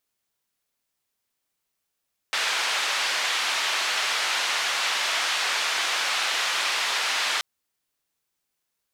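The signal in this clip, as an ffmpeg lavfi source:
-f lavfi -i "anoisesrc=c=white:d=5.08:r=44100:seed=1,highpass=f=870,lowpass=f=3800,volume=-12.3dB"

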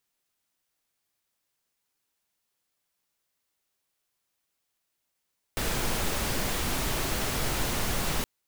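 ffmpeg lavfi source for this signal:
-f lavfi -i "anoisesrc=c=pink:a=0.193:d=2.67:r=44100:seed=1"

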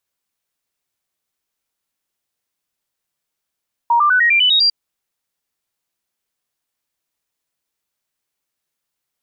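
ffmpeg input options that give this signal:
-f lavfi -i "aevalsrc='0.316*clip(min(mod(t,0.1),0.1-mod(t,0.1))/0.005,0,1)*sin(2*PI*942*pow(2,floor(t/0.1)/3)*mod(t,0.1))':d=0.8:s=44100"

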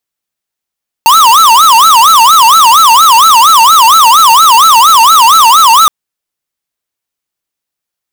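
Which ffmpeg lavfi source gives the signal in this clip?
-f lavfi -i "aevalsrc='0.668*(2*lt(mod((1113*t-217/(2*PI*4.3)*sin(2*PI*4.3*t)),1),0.5)-1)':d=4.82:s=44100"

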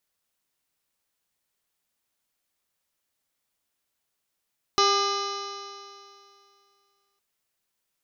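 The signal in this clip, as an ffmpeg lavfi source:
-f lavfi -i "aevalsrc='0.0668*pow(10,-3*t/2.46)*sin(2*PI*396.65*t)+0.0398*pow(10,-3*t/2.46)*sin(2*PI*797.21*t)+0.106*pow(10,-3*t/2.46)*sin(2*PI*1205.51*t)+0.0133*pow(10,-3*t/2.46)*sin(2*PI*1625.28*t)+0.0188*pow(10,-3*t/2.46)*sin(2*PI*2060.06*t)+0.015*pow(10,-3*t/2.46)*sin(2*PI*2513.17*t)+0.0335*pow(10,-3*t/2.46)*sin(2*PI*2987.72*t)+0.0168*pow(10,-3*t/2.46)*sin(2*PI*3486.53*t)+0.0531*pow(10,-3*t/2.46)*sin(2*PI*4012.15*t)+0.02*pow(10,-3*t/2.46)*sin(2*PI*4566.89*t)+0.0447*pow(10,-3*t/2.46)*sin(2*PI*5152.8*t)+0.0299*pow(10,-3*t/2.46)*sin(2*PI*5771.68*t)+0.015*pow(10,-3*t/2.46)*sin(2*PI*6425.11*t)':d=2.41:s=44100"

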